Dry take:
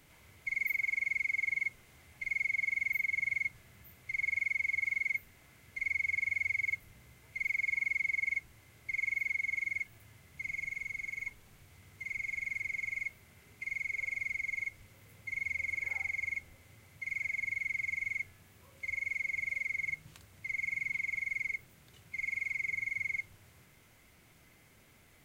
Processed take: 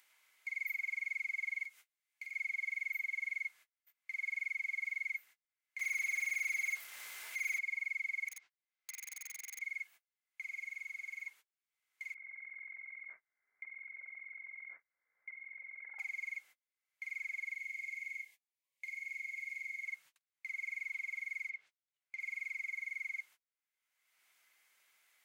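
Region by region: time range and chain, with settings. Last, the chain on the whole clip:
0:01.65–0:02.33: high-shelf EQ 2,600 Hz +6.5 dB + downward compressor 2 to 1, threshold −46 dBFS + double-tracking delay 14 ms −9 dB
0:05.79–0:07.59: high-pass filter 210 Hz 6 dB per octave + power curve on the samples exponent 0.5
0:08.28–0:09.61: low-pass filter 5,600 Hz 24 dB per octave + downward compressor 16 to 1, threshold −38 dBFS + wrap-around overflow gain 38 dB
0:12.14–0:15.99: compressor whose output falls as the input rises −46 dBFS + Chebyshev low-pass with heavy ripple 2,200 Hz, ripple 3 dB
0:17.55–0:19.86: Butterworth band-reject 1,400 Hz, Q 2.3 + parametric band 900 Hz −6 dB 2 octaves + flutter between parallel walls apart 5.2 metres, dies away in 0.21 s
0:21.47–0:22.20: treble cut that deepens with the level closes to 2,900 Hz, closed at −34.5 dBFS + parametric band 1,200 Hz −3.5 dB 0.85 octaves + one half of a high-frequency compander decoder only
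whole clip: high-pass filter 1,200 Hz 12 dB per octave; noise gate −52 dBFS, range −40 dB; upward compression, threshold −36 dBFS; level −5.5 dB

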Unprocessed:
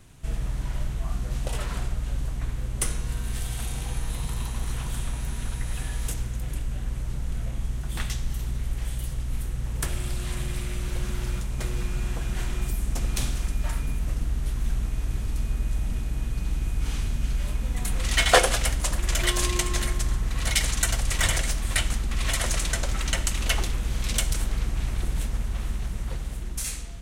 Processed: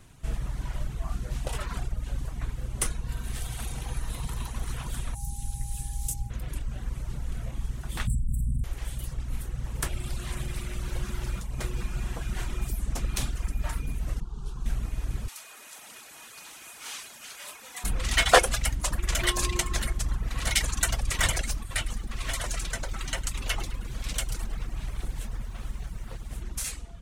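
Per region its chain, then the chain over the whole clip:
0:05.14–0:06.29: drawn EQ curve 130 Hz 0 dB, 520 Hz −15 dB, 1,300 Hz −21 dB, 7,900 Hz +5 dB + steady tone 810 Hz −48 dBFS
0:08.07–0:08.64: linear-phase brick-wall band-stop 270–7,500 Hz + parametric band 13,000 Hz −14 dB 0.39 octaves + envelope flattener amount 100%
0:14.20–0:14.66: high-frequency loss of the air 60 metres + phaser with its sweep stopped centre 400 Hz, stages 8
0:15.28–0:17.84: high-pass filter 710 Hz + high-shelf EQ 3,100 Hz +6.5 dB
0:21.63–0:26.31: flanger 1.2 Hz, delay 6.6 ms, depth 3 ms, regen −53% + feedback echo at a low word length 105 ms, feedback 55%, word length 9 bits, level −10 dB
whole clip: reverb reduction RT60 0.86 s; parametric band 1,100 Hz +2.5 dB 1.4 octaves; level −1 dB

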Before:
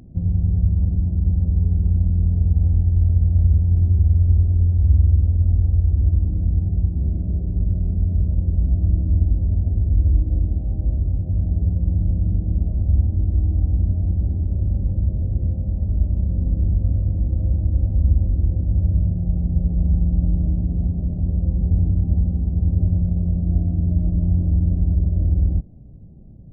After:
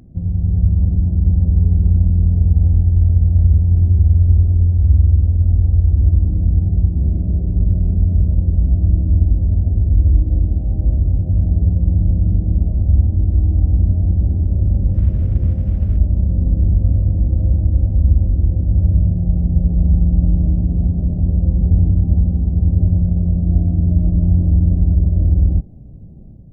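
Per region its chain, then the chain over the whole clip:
0:14.94–0:15.97: variable-slope delta modulation 64 kbit/s + linearly interpolated sample-rate reduction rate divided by 8×
whole clip: hum removal 398.1 Hz, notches 5; automatic gain control gain up to 6 dB

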